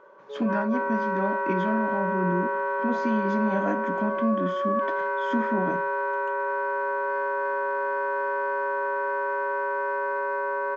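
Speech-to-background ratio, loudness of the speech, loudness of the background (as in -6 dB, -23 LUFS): -2.0 dB, -29.5 LUFS, -27.5 LUFS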